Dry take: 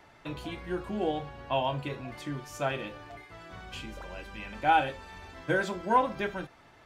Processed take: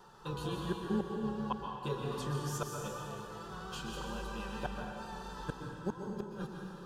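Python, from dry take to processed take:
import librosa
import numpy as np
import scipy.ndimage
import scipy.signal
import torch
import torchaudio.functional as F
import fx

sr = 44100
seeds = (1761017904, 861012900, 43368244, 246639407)

y = fx.vibrato(x, sr, rate_hz=4.4, depth_cents=37.0)
y = fx.fixed_phaser(y, sr, hz=430.0, stages=8)
y = fx.gate_flip(y, sr, shuts_db=-27.0, range_db=-36)
y = fx.rev_plate(y, sr, seeds[0], rt60_s=2.2, hf_ratio=0.85, predelay_ms=110, drr_db=0.5)
y = y * librosa.db_to_amplitude(3.0)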